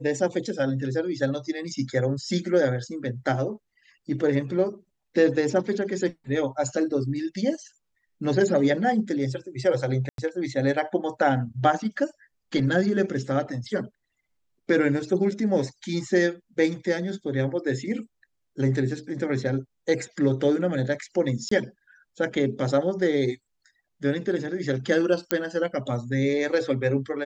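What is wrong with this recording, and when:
0:10.09–0:10.18: drop-out 92 ms
0:21.49–0:21.51: drop-out 24 ms
0:25.31: click −6 dBFS

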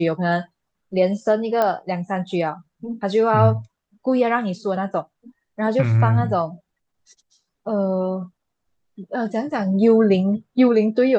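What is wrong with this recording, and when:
0:01.62: click −9 dBFS

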